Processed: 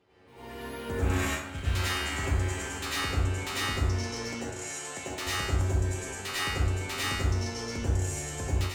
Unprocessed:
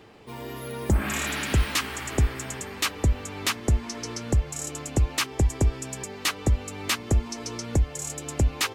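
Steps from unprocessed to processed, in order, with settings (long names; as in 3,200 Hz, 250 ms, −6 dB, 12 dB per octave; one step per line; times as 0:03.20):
high-shelf EQ 10,000 Hz −8.5 dB
notch filter 1,800 Hz, Q 30
tuned comb filter 92 Hz, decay 0.77 s, harmonics all, mix 90%
downward compressor 6 to 1, threshold −35 dBFS, peak gain reduction 6.5 dB
0:01.25–0:01.65: noise gate −37 dBFS, range −17 dB
0:04.32–0:05.17: meter weighting curve A
hard clipping −39 dBFS, distortion −9 dB
dense smooth reverb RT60 0.76 s, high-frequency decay 0.55×, pre-delay 80 ms, DRR −8 dB
automatic gain control gain up to 10 dB
level −4.5 dB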